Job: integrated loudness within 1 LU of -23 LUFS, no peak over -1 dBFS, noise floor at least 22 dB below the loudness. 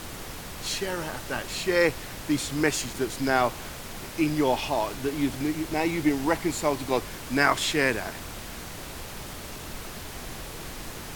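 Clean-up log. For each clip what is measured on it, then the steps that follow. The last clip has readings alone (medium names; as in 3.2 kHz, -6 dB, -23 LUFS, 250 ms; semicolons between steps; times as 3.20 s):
noise floor -39 dBFS; noise floor target -50 dBFS; loudness -28.0 LUFS; peak level -6.5 dBFS; loudness target -23.0 LUFS
-> noise print and reduce 11 dB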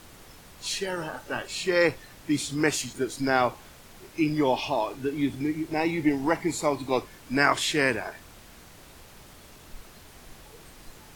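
noise floor -50 dBFS; loudness -27.0 LUFS; peak level -6.5 dBFS; loudness target -23.0 LUFS
-> trim +4 dB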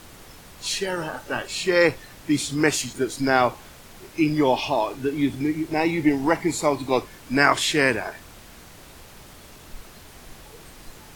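loudness -23.0 LUFS; peak level -2.5 dBFS; noise floor -46 dBFS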